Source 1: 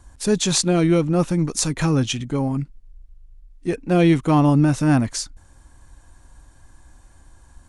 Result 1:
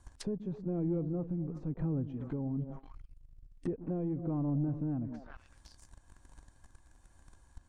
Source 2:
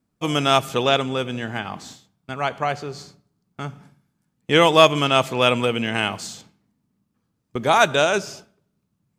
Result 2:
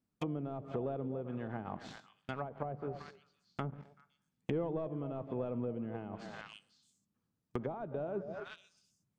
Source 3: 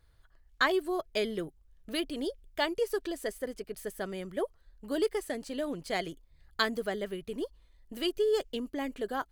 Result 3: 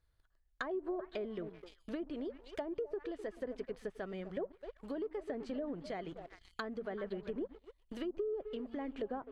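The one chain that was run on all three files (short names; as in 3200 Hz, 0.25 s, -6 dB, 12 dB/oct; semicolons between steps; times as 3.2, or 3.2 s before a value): delay with a stepping band-pass 0.127 s, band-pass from 200 Hz, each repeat 1.4 oct, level -10 dB; sample leveller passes 2; compressor 2.5:1, threshold -29 dBFS; tremolo 1.1 Hz, depth 28%; treble ducked by the level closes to 490 Hz, closed at -25 dBFS; gain -7.5 dB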